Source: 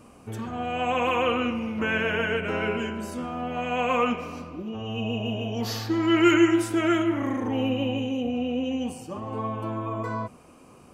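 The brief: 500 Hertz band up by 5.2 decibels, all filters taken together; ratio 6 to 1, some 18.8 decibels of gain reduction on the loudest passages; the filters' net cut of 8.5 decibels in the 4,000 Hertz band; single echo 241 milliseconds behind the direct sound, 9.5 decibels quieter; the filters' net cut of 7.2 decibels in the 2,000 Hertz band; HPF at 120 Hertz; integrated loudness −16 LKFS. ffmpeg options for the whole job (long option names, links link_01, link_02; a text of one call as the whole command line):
ffmpeg -i in.wav -af "highpass=120,equalizer=frequency=500:width_type=o:gain=7,equalizer=frequency=2000:width_type=o:gain=-8.5,equalizer=frequency=4000:width_type=o:gain=-8.5,acompressor=threshold=-33dB:ratio=6,aecho=1:1:241:0.335,volume=19.5dB" out.wav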